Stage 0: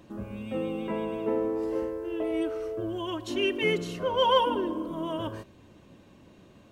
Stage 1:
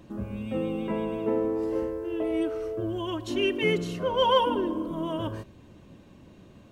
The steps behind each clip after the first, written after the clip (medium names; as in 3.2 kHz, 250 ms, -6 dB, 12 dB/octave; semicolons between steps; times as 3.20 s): bass shelf 200 Hz +7 dB; hum notches 50/100 Hz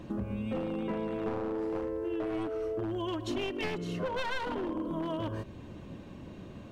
one-sided wavefolder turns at -25 dBFS; treble shelf 5.7 kHz -8.5 dB; compression 6:1, threshold -37 dBFS, peak gain reduction 16 dB; trim +5.5 dB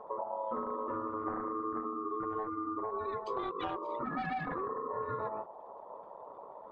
resonances exaggerated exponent 2; flange 1.4 Hz, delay 3.2 ms, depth 8.4 ms, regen -53%; ring modulator 760 Hz; trim +4 dB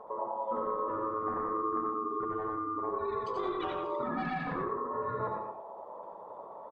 delay 90 ms -6.5 dB; reverberation, pre-delay 70 ms, DRR 3.5 dB